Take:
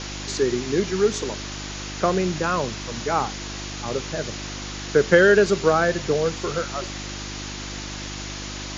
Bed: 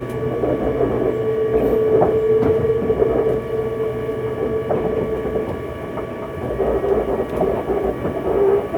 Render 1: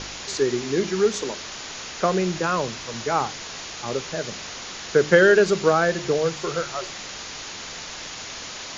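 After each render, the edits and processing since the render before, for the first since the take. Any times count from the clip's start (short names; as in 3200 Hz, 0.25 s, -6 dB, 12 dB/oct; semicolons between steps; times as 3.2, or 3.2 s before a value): de-hum 50 Hz, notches 7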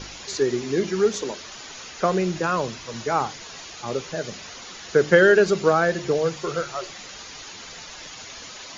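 denoiser 8 dB, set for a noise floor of -36 dBFS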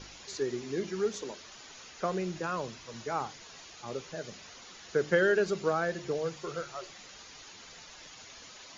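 gain -10.5 dB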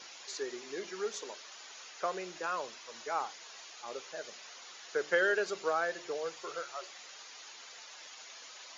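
HPF 550 Hz 12 dB/oct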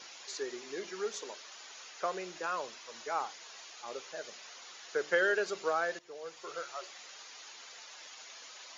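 5.99–6.64 fade in, from -18 dB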